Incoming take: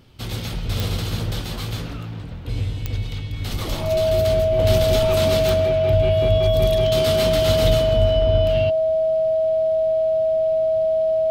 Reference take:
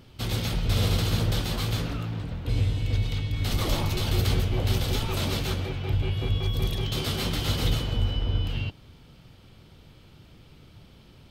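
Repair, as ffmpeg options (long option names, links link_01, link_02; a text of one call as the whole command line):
ffmpeg -i in.wav -af "adeclick=threshold=4,bandreject=frequency=640:width=30,asetnsamples=nb_out_samples=441:pad=0,asendcmd='4.59 volume volume -5.5dB',volume=0dB" out.wav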